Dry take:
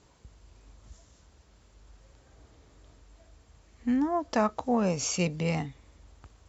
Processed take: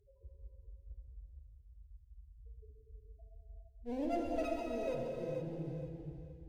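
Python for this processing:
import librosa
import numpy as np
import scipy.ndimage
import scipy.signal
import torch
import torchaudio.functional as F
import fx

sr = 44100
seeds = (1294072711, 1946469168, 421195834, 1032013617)

p1 = fx.low_shelf(x, sr, hz=190.0, db=10.0, at=(3.9, 4.35), fade=0.02)
p2 = fx.over_compress(p1, sr, threshold_db=-37.0, ratio=-1.0)
p3 = p1 + (p2 * 10.0 ** (-1.0 / 20.0))
p4 = fx.filter_lfo_lowpass(p3, sr, shape='saw_down', hz=7.9, low_hz=420.0, high_hz=2000.0, q=2.1)
p5 = fx.spec_topn(p4, sr, count=1)
p6 = fx.clip_asym(p5, sr, top_db=-39.0, bottom_db=-23.5)
p7 = fx.fixed_phaser(p6, sr, hz=480.0, stages=4)
p8 = p7 + fx.echo_feedback(p7, sr, ms=472, feedback_pct=25, wet_db=-8, dry=0)
p9 = fx.rev_gated(p8, sr, seeds[0], gate_ms=480, shape='flat', drr_db=-2.0)
y = p9 * 10.0 ** (-2.5 / 20.0)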